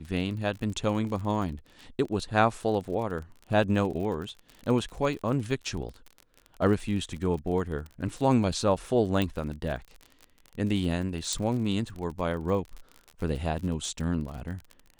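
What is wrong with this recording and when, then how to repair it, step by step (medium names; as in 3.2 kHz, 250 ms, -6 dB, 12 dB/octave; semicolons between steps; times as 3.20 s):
crackle 40 per s -35 dBFS
9.22 s: pop -15 dBFS
11.33 s: pop -16 dBFS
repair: de-click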